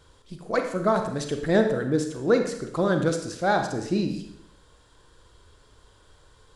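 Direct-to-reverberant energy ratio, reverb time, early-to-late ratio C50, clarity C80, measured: 5.0 dB, 0.75 s, 7.0 dB, 9.5 dB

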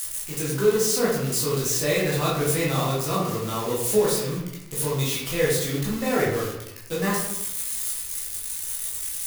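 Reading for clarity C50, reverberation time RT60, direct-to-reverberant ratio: 2.0 dB, 0.90 s, -6.5 dB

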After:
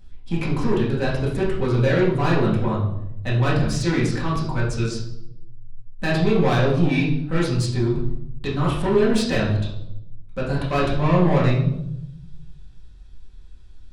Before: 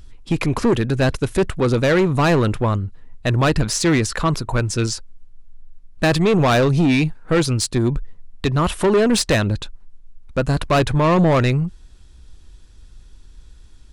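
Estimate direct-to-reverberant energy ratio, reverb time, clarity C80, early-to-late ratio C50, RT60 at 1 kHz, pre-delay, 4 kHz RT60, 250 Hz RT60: -7.0 dB, 0.80 s, 8.5 dB, 4.0 dB, 0.70 s, 4 ms, 0.60 s, 1.2 s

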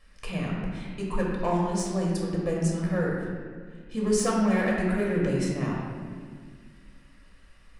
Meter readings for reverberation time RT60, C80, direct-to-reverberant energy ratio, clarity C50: 1.8 s, 2.0 dB, -3.5 dB, -0.5 dB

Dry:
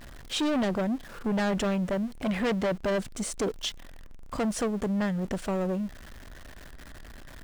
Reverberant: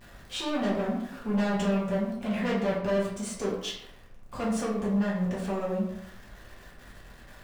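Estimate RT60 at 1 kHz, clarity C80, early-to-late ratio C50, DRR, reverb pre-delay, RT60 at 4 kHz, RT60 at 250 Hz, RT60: 0.75 s, 6.0 dB, 3.0 dB, -7.0 dB, 3 ms, 0.50 s, 0.80 s, 0.75 s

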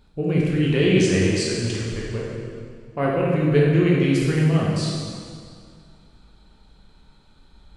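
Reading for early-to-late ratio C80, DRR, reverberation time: 0.5 dB, -5.0 dB, 2.1 s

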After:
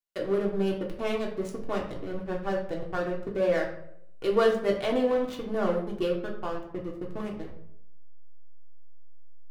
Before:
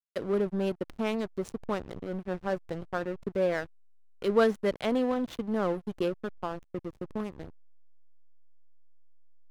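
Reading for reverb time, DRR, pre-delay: 0.70 s, -1.5 dB, 3 ms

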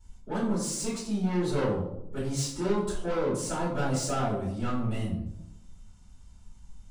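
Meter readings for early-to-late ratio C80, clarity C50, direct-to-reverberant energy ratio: 7.0 dB, 3.0 dB, -12.5 dB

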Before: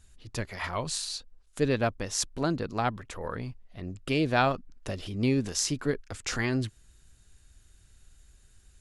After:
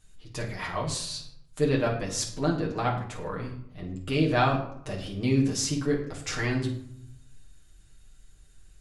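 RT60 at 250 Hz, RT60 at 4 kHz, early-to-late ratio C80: 1.0 s, 0.45 s, 10.5 dB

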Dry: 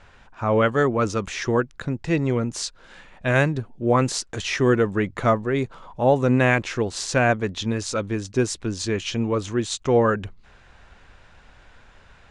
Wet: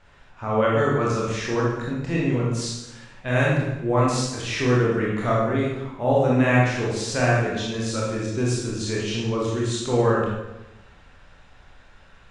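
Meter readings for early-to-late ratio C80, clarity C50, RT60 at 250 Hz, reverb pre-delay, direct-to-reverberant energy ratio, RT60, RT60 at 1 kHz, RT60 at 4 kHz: 3.0 dB, -0.5 dB, 1.1 s, 22 ms, -5.5 dB, 1.0 s, 0.95 s, 0.85 s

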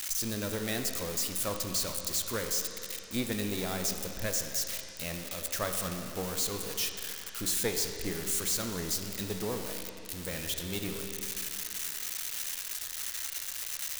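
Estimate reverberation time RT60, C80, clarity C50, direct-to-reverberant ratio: 2.8 s, 6.0 dB, 5.0 dB, 4.0 dB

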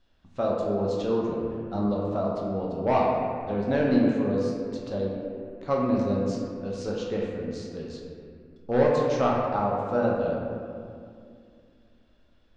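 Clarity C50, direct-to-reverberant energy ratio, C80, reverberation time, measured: 0.0 dB, -3.5 dB, 1.5 dB, 2.3 s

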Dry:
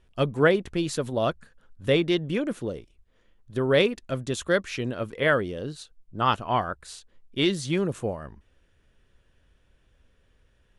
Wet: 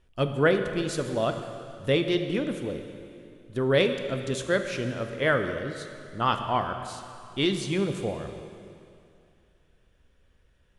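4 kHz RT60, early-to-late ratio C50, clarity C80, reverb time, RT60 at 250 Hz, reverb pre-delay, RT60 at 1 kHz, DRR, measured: 2.4 s, 8.0 dB, 8.5 dB, 2.6 s, 2.5 s, 7 ms, 2.6 s, 6.5 dB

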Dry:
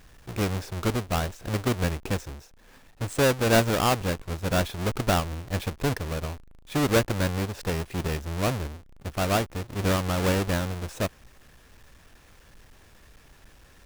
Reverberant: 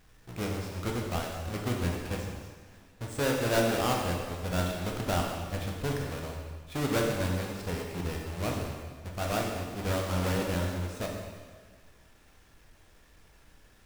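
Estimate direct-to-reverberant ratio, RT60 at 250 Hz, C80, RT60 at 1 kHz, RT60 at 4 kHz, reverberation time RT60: -0.5 dB, 1.6 s, 4.0 dB, 1.6 s, 1.5 s, 1.6 s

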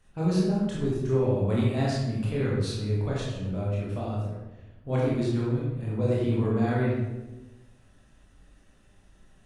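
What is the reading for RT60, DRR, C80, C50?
1.1 s, -6.5 dB, 2.5 dB, -1.0 dB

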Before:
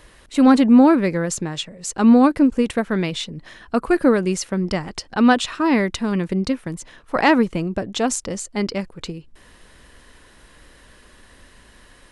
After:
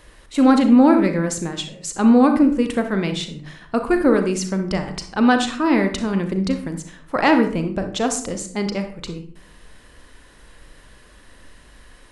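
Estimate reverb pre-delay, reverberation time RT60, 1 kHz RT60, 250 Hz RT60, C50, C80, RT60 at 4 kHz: 35 ms, 0.50 s, 0.45 s, 0.75 s, 8.5 dB, 13.5 dB, 0.30 s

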